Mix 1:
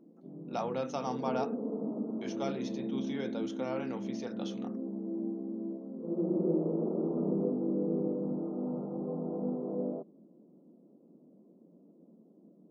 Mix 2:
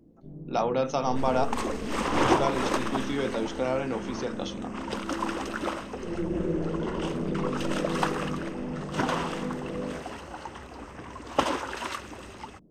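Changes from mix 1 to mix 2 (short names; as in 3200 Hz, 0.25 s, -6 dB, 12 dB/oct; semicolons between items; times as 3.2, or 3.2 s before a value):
speech +8.5 dB; first sound: remove brick-wall FIR band-pass 160–1400 Hz; second sound: unmuted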